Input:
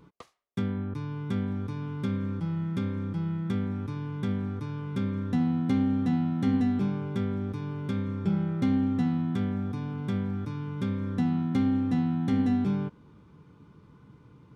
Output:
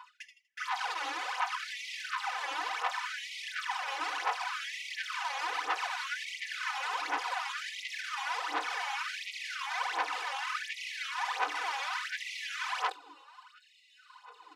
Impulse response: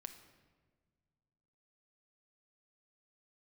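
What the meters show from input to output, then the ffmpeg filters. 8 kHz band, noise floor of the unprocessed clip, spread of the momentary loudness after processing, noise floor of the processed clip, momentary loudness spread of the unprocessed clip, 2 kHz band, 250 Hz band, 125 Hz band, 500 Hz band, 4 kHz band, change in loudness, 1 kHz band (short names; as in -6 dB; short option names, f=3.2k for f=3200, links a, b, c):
n/a, -56 dBFS, 5 LU, -62 dBFS, 8 LU, +13.0 dB, -33.5 dB, under -40 dB, -9.5 dB, +12.5 dB, -5.5 dB, +9.0 dB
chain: -filter_complex "[0:a]acrusher=samples=11:mix=1:aa=0.000001,acompressor=threshold=-32dB:ratio=8,asplit=4[a][b][c][d];[b]adelay=81,afreqshift=-33,volume=-10dB[e];[c]adelay=162,afreqshift=-66,volume=-20.2dB[f];[d]adelay=243,afreqshift=-99,volume=-30.3dB[g];[a][e][f][g]amix=inputs=4:normalize=0,aeval=exprs='(mod(84.1*val(0)+1,2)-1)/84.1':c=same,lowshelf=f=700:t=q:w=3:g=-6,aphaser=in_gain=1:out_gain=1:delay=3.7:decay=0.73:speed=1.4:type=sinusoidal,highpass=140,lowpass=4.5k,aecho=1:1:4:0.76,afftfilt=real='re*gte(b*sr/1024,280*pow(1900/280,0.5+0.5*sin(2*PI*0.67*pts/sr)))':imag='im*gte(b*sr/1024,280*pow(1900/280,0.5+0.5*sin(2*PI*0.67*pts/sr)))':win_size=1024:overlap=0.75,volume=4dB"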